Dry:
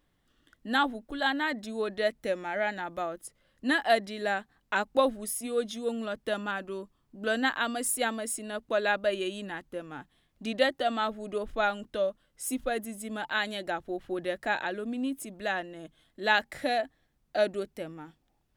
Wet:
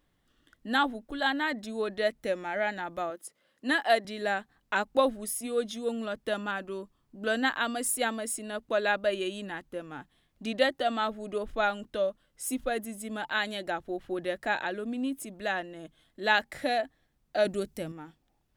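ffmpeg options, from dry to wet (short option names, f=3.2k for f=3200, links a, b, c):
-filter_complex "[0:a]asettb=1/sr,asplit=3[a][b][c];[a]atrim=end=3.104[d];[b]atrim=start=3.1:end=4.05,asetpts=PTS-STARTPTS,afade=t=in:d=0.004:c=qsin,afade=t=out:st=0.946:d=0.004:c=qsin,highpass=250[e];[c]atrim=start=4.046[f];[d][e]acrossfade=d=0.004:c1=hsin:c2=qsin[g];[g][f]acrossfade=d=0.004:c1=qsin:c2=hsin,asettb=1/sr,asplit=3[h][i][j];[h]atrim=end=17.454[k];[i]atrim=start=17.45:end=17.92,asetpts=PTS-STARTPTS,afade=t=in:d=0.004:c=qsin,afade=t=out:st=0.466:d=0.004:c=qsin,bass=f=250:g=8,treble=f=4k:g=8[l];[j]atrim=start=17.916[m];[k][l]acrossfade=d=0.004:c1=hsin:c2=qsin[n];[n][m]acrossfade=d=0.004:c1=qsin:c2=hsin"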